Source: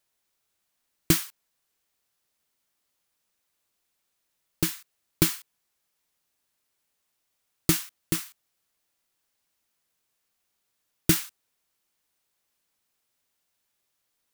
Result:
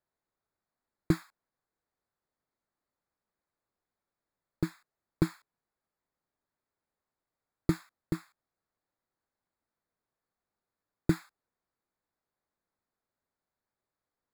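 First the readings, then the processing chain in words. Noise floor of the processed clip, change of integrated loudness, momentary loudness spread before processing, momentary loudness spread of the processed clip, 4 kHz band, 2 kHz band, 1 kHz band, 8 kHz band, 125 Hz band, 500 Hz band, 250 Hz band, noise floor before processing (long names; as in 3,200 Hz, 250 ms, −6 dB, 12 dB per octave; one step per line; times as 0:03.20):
below −85 dBFS, −8.0 dB, 17 LU, 6 LU, −18.5 dB, −10.0 dB, −5.0 dB, −24.0 dB, −2.5 dB, −2.5 dB, −2.5 dB, −78 dBFS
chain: moving average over 15 samples
level −2.5 dB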